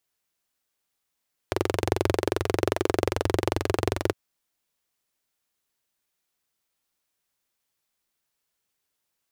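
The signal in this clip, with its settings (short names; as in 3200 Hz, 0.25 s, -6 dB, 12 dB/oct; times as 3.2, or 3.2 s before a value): single-cylinder engine model, steady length 2.61 s, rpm 2700, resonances 97/370 Hz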